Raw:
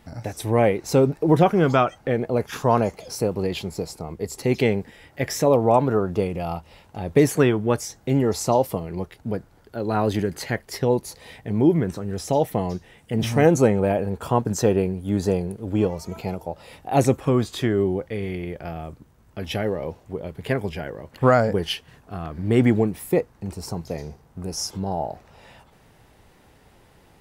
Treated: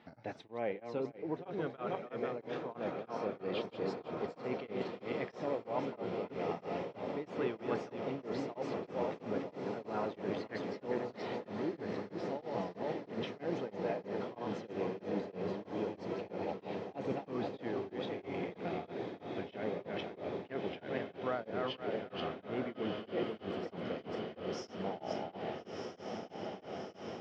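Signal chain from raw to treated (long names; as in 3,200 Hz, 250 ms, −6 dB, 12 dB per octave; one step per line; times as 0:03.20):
feedback delay that plays each chunk backwards 244 ms, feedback 45%, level −5.5 dB
low-pass filter 3,900 Hz 24 dB per octave
reversed playback
downward compressor 6 to 1, threshold −28 dBFS, peak gain reduction 16.5 dB
reversed playback
high-pass filter 220 Hz 12 dB per octave
feedback delay with all-pass diffusion 1,333 ms, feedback 80%, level −6 dB
tremolo along a rectified sine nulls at 3.1 Hz
level −4.5 dB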